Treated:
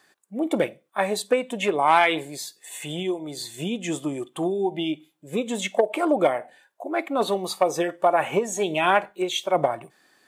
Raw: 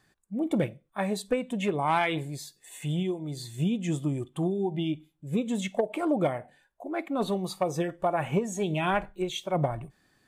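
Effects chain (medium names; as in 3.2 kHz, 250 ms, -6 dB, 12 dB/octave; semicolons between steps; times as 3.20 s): high-pass 370 Hz 12 dB/octave; trim +8 dB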